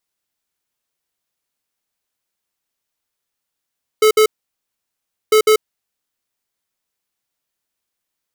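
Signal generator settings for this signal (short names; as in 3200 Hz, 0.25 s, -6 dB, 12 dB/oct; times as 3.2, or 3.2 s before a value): beep pattern square 432 Hz, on 0.09 s, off 0.06 s, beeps 2, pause 1.06 s, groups 2, -10.5 dBFS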